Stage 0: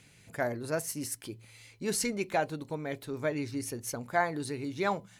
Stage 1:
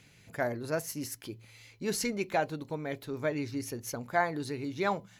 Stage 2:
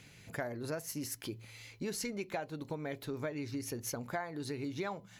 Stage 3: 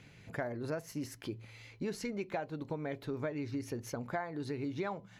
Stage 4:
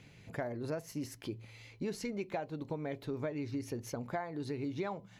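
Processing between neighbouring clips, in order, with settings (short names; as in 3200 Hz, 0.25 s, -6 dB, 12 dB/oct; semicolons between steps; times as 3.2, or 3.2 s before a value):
bell 8800 Hz -13.5 dB 0.23 oct
compressor 6:1, threshold -38 dBFS, peak gain reduction 15.5 dB; gain +2.5 dB
LPF 2300 Hz 6 dB/oct; gain +1.5 dB
bell 1500 Hz -4 dB 0.74 oct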